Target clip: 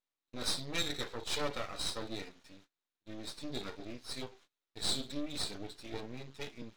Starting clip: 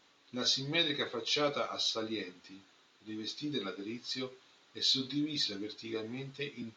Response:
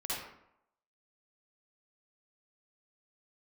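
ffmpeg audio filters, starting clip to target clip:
-af "agate=range=-26dB:threshold=-57dB:ratio=16:detection=peak,aeval=exprs='max(val(0),0)':channel_layout=same"

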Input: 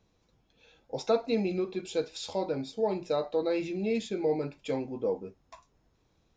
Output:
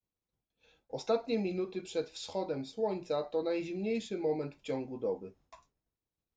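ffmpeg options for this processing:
ffmpeg -i in.wav -af "agate=range=-33dB:threshold=-57dB:ratio=3:detection=peak,volume=-4dB" out.wav

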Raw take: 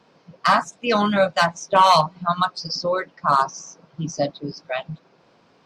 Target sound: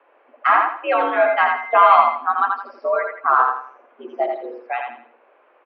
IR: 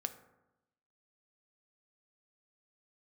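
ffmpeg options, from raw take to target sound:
-filter_complex "[0:a]aecho=1:1:83|166|249|332:0.631|0.208|0.0687|0.0227,asettb=1/sr,asplit=3[link_01][link_02][link_03];[link_01]atrim=end=1.264[link_04];[link_02]atrim=start=1.26:end=2.15,asetpts=PTS-STARTPTS,afade=type=in:duration=0.004:curve=qsin,afade=type=out:start_time=0.886:duration=0.004:curve=qsin,aeval=exprs='val(0)+0.0251*sin(2*PI*2000*n/s)':channel_layout=same[link_05];[link_03]atrim=start=2.146[link_06];[link_04][link_05]acrossfade=duration=0.004:curve1=hsin:curve2=qsin[link_07];[link_07][link_06]acrossfade=duration=0.004:curve1=qsin:curve2=hsin,highpass=frequency=310:width_type=q:width=0.5412,highpass=frequency=310:width_type=q:width=1.307,lowpass=frequency=2500:width_type=q:width=0.5176,lowpass=frequency=2500:width_type=q:width=0.7071,lowpass=frequency=2500:width_type=q:width=1.932,afreqshift=78,volume=1.5dB"

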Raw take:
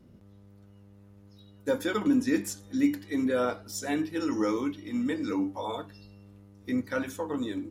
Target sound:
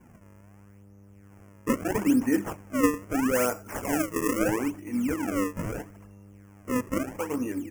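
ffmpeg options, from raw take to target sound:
ffmpeg -i in.wav -filter_complex "[0:a]acrusher=samples=33:mix=1:aa=0.000001:lfo=1:lforange=52.8:lforate=0.77,asuperstop=centerf=3900:order=4:qfactor=1.2,asettb=1/sr,asplit=3[link_01][link_02][link_03];[link_01]atrim=end=3.354[link_04];[link_02]atrim=start=3.35:end=4.39,asetpts=PTS-STARTPTS,afade=type=in:duration=0.004:curve=qsin,afade=type=out:start_time=1.036:duration=0.004:curve=qsin,highshelf=frequency=3700:gain=6.5[link_05];[link_03]atrim=start=4.386[link_06];[link_04][link_05]acrossfade=duration=0.004:curve1=hsin:curve2=qsin[link_07];[link_07][link_06]acrossfade=duration=0.004:curve1=qsin:curve2=hsin,volume=2dB" out.wav

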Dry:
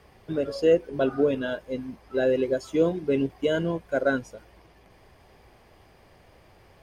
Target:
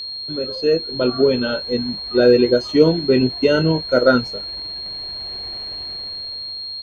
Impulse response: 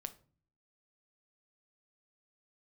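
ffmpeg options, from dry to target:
-filter_complex "[0:a]asplit=2[link_01][link_02];[link_02]adelay=23,volume=-10.5dB[link_03];[link_01][link_03]amix=inputs=2:normalize=0,dynaudnorm=framelen=200:gausssize=11:maxgain=14dB,aeval=exprs='val(0)+0.0562*sin(2*PI*4500*n/s)':channel_layout=same,acrossover=split=5000[link_04][link_05];[link_05]acompressor=threshold=-42dB:ratio=4:attack=1:release=60[link_06];[link_04][link_06]amix=inputs=2:normalize=0,asetrate=41625,aresample=44100,atempo=1.05946"

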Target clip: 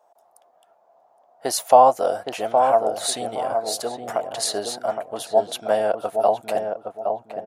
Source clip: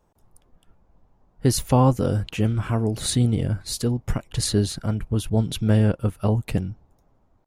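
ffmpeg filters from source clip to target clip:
ffmpeg -i in.wav -filter_complex "[0:a]highpass=frequency=680:width_type=q:width=7.1,equalizer=frequency=2400:width=1.8:gain=-3,asplit=2[link_01][link_02];[link_02]adelay=816,lowpass=frequency=930:poles=1,volume=-4dB,asplit=2[link_03][link_04];[link_04]adelay=816,lowpass=frequency=930:poles=1,volume=0.36,asplit=2[link_05][link_06];[link_06]adelay=816,lowpass=frequency=930:poles=1,volume=0.36,asplit=2[link_07][link_08];[link_08]adelay=816,lowpass=frequency=930:poles=1,volume=0.36,asplit=2[link_09][link_10];[link_10]adelay=816,lowpass=frequency=930:poles=1,volume=0.36[link_11];[link_01][link_03][link_05][link_07][link_09][link_11]amix=inputs=6:normalize=0,volume=1.5dB" out.wav

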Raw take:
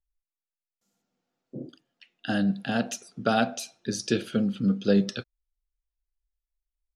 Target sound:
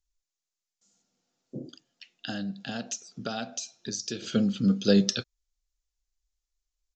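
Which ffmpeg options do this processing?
ffmpeg -i in.wav -filter_complex "[0:a]bass=frequency=250:gain=1,treble=frequency=4000:gain=15,asplit=3[link_01][link_02][link_03];[link_01]afade=type=out:start_time=1.58:duration=0.02[link_04];[link_02]acompressor=threshold=-36dB:ratio=2.5,afade=type=in:start_time=1.58:duration=0.02,afade=type=out:start_time=4.22:duration=0.02[link_05];[link_03]afade=type=in:start_time=4.22:duration=0.02[link_06];[link_04][link_05][link_06]amix=inputs=3:normalize=0,aresample=16000,aresample=44100" out.wav

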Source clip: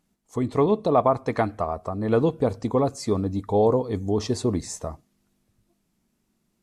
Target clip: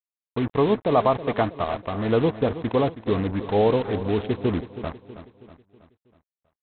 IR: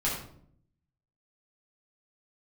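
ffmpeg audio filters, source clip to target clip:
-af "aresample=8000,acrusher=bits=4:mix=0:aa=0.5,aresample=44100,aecho=1:1:322|644|966|1288|1610:0.211|0.101|0.0487|0.0234|0.0112"

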